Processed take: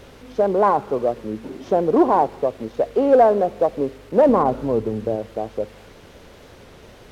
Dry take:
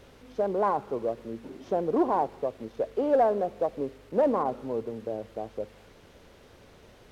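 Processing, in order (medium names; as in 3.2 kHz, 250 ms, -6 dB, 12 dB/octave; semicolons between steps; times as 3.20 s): 4.29–5.16 s: bass shelf 170 Hz +9.5 dB; warped record 33 1/3 rpm, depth 100 cents; trim +9 dB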